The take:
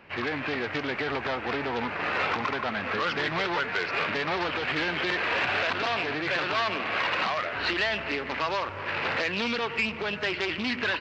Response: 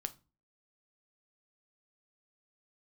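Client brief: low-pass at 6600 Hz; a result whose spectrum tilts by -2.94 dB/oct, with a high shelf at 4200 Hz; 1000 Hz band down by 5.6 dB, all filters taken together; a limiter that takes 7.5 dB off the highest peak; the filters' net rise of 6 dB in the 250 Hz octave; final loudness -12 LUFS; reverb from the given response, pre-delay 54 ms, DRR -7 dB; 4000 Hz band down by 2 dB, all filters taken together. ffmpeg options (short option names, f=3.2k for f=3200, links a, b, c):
-filter_complex "[0:a]lowpass=6.6k,equalizer=f=250:t=o:g=8,equalizer=f=1k:t=o:g=-8,equalizer=f=4k:t=o:g=-4.5,highshelf=f=4.2k:g=5,alimiter=limit=-23dB:level=0:latency=1,asplit=2[a][b];[1:a]atrim=start_sample=2205,adelay=54[c];[b][c]afir=irnorm=-1:irlink=0,volume=8.5dB[d];[a][d]amix=inputs=2:normalize=0,volume=11.5dB"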